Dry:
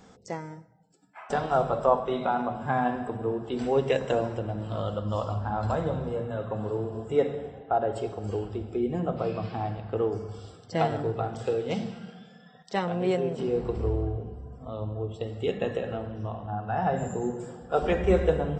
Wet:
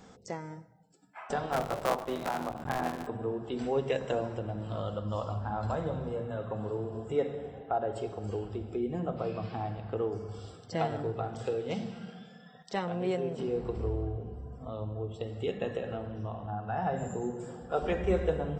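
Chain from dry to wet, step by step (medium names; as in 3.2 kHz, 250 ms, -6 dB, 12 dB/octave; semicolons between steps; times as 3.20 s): 1.51–3.07 s: cycle switcher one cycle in 3, muted; in parallel at +1 dB: compression, threshold -37 dBFS, peak gain reduction 19 dB; on the sum: trim -7 dB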